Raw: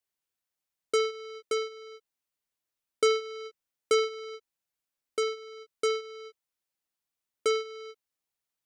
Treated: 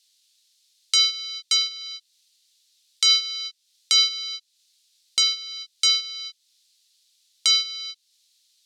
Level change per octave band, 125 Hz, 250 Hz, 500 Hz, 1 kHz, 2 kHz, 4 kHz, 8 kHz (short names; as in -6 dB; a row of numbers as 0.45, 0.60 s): n/a, under -20 dB, under -25 dB, -6.0 dB, +5.0 dB, +19.0 dB, +15.5 dB